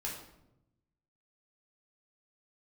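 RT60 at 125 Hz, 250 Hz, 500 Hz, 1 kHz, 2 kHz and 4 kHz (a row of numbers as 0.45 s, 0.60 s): 1.5 s, 1.2 s, 0.95 s, 0.75 s, 0.65 s, 0.55 s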